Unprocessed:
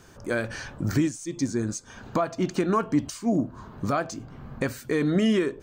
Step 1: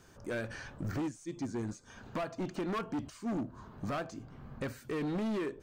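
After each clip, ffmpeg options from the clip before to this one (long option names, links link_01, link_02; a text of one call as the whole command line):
ffmpeg -i in.wav -filter_complex "[0:a]acrossover=split=3000[link_01][link_02];[link_02]acompressor=threshold=-45dB:ratio=4:attack=1:release=60[link_03];[link_01][link_03]amix=inputs=2:normalize=0,volume=24dB,asoftclip=hard,volume=-24dB,volume=-7.5dB" out.wav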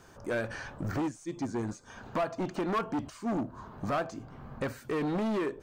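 ffmpeg -i in.wav -af "equalizer=frequency=850:width_type=o:width=1.8:gain=5.5,volume=2dB" out.wav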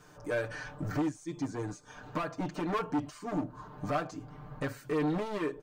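ffmpeg -i in.wav -af "aecho=1:1:6.7:0.88,volume=-3.5dB" out.wav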